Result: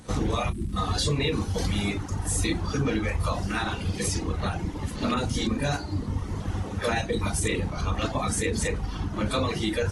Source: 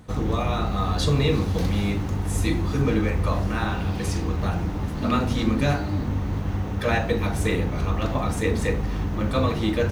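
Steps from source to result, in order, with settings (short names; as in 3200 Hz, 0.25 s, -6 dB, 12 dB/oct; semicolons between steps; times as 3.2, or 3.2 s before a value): high shelf 4100 Hz +11 dB; notches 60/120/180 Hz; tape echo 63 ms, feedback 71%, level -24 dB, low-pass 2100 Hz; reverb removal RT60 1.7 s; 0.49–0.76 spectral delete 400–7600 Hz; crackle 230/s -40 dBFS; 5.14–7.32 bands offset in time lows, highs 30 ms, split 2400 Hz; limiter -17 dBFS, peak gain reduction 7.5 dB; AAC 32 kbps 24000 Hz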